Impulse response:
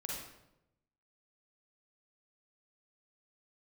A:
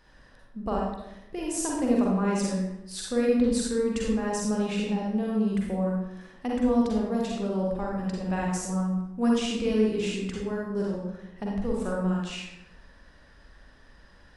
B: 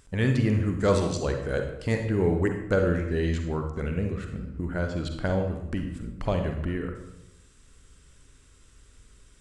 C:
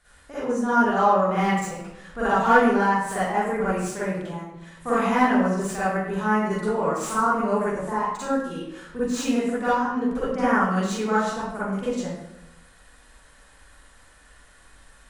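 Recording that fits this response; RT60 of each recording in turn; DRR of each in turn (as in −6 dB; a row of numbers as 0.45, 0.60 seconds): A; 0.90, 0.90, 0.90 seconds; −3.5, 4.5, −12.0 decibels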